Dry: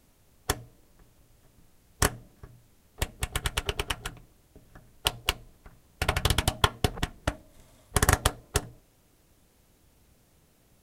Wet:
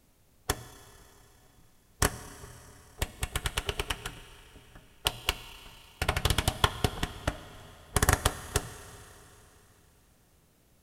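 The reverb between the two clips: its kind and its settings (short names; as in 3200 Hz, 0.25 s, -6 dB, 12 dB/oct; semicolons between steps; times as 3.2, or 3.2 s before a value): Schroeder reverb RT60 3.4 s, combs from 25 ms, DRR 13 dB; gain -2 dB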